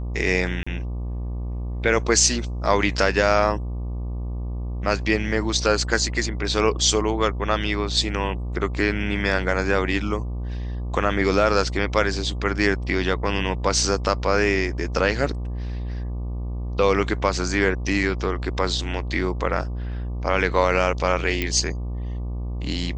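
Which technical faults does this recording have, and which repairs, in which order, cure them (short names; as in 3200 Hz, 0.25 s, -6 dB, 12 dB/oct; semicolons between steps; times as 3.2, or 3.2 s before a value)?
buzz 60 Hz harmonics 20 -28 dBFS
0.63–0.67 gap 35 ms
21.42 pop -10 dBFS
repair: de-click; de-hum 60 Hz, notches 20; interpolate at 0.63, 35 ms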